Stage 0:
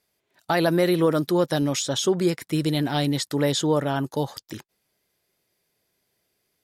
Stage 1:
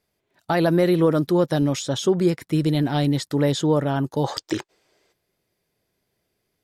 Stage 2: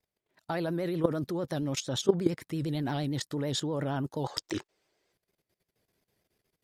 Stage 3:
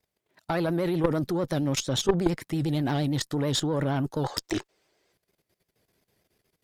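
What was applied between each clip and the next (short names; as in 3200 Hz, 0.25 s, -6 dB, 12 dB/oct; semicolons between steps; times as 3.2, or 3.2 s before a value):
spectral gain 4.24–5.12, 280–8800 Hz +12 dB; tilt -1.5 dB/oct
level quantiser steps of 15 dB; vibrato 8.7 Hz 83 cents; gain -1 dB
tube stage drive 22 dB, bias 0.5; gain +7.5 dB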